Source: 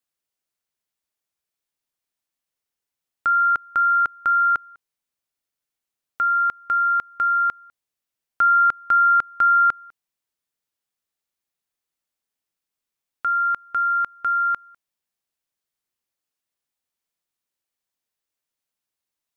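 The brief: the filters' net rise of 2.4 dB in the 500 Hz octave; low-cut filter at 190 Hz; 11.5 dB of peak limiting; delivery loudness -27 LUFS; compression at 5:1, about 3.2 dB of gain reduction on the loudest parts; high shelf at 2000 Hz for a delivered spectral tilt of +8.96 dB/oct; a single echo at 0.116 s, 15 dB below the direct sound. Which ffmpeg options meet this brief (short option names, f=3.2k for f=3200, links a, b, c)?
-af "highpass=190,equalizer=f=500:t=o:g=4,highshelf=f=2k:g=-9,acompressor=threshold=-22dB:ratio=5,alimiter=level_in=1dB:limit=-24dB:level=0:latency=1,volume=-1dB,aecho=1:1:116:0.178,volume=2.5dB"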